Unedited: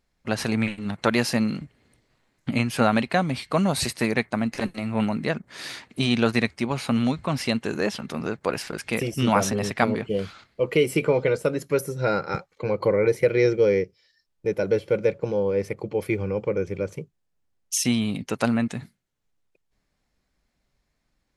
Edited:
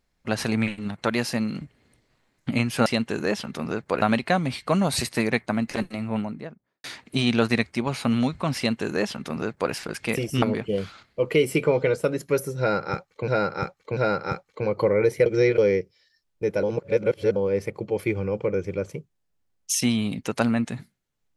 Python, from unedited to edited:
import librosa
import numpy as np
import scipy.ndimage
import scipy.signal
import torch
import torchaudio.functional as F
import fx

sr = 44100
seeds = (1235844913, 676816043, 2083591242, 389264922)

y = fx.studio_fade_out(x, sr, start_s=4.61, length_s=1.07)
y = fx.edit(y, sr, fx.clip_gain(start_s=0.88, length_s=0.67, db=-3.0),
    fx.duplicate(start_s=7.41, length_s=1.16, to_s=2.86),
    fx.cut(start_s=9.26, length_s=0.57),
    fx.repeat(start_s=12.0, length_s=0.69, count=3),
    fx.reverse_span(start_s=13.29, length_s=0.32),
    fx.reverse_span(start_s=14.66, length_s=0.73), tone=tone)